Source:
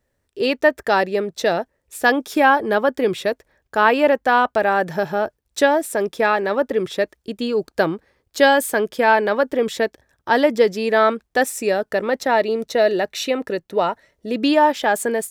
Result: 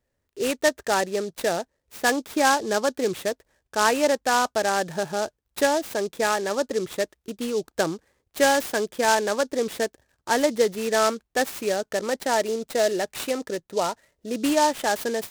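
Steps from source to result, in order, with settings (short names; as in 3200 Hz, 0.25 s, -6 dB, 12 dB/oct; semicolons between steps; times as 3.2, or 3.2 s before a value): noise-modulated delay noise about 5000 Hz, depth 0.049 ms; gain -5.5 dB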